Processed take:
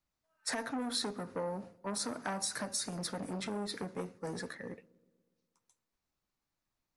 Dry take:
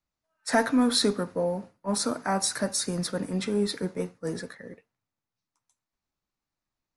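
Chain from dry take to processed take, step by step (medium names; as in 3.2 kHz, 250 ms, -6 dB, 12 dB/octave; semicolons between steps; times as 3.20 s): compression 4:1, threshold -33 dBFS, peak gain reduction 13.5 dB; on a send: feedback echo behind a low-pass 121 ms, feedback 63%, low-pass 630 Hz, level -23.5 dB; on the sum: transformer saturation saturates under 1.1 kHz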